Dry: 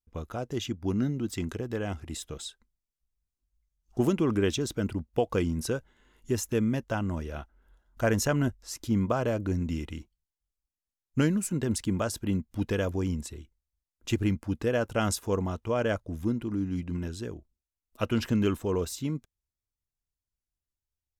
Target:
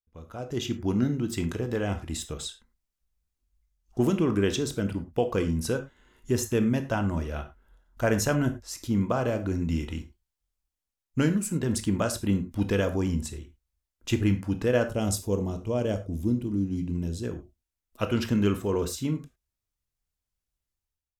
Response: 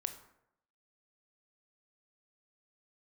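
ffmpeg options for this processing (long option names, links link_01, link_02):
-filter_complex "[0:a]asettb=1/sr,asplit=3[link_01][link_02][link_03];[link_01]atrim=end=14.834[link_04];[link_02]atrim=start=14.83:end=17.24,asetpts=PTS-STARTPTS,afade=type=in:duration=0.004:curve=qsin,afade=type=out:start_time=2.406:duration=0.004:curve=qsin,equalizer=frequency=1500:width_type=o:width=1.8:gain=-14.5[link_05];[link_03]atrim=start=17.236[link_06];[link_04][link_05]acrossfade=duration=0.004:curve1=hsin:curve2=qsin[link_07];[link_07][link_06]acrossfade=duration=0.004:curve1=qsin:curve2=hsin,dynaudnorm=framelen=180:gausssize=5:maxgain=14dB[link_08];[1:a]atrim=start_sample=2205,atrim=end_sample=6615,asetrate=57330,aresample=44100[link_09];[link_08][link_09]afir=irnorm=-1:irlink=0,volume=-7dB"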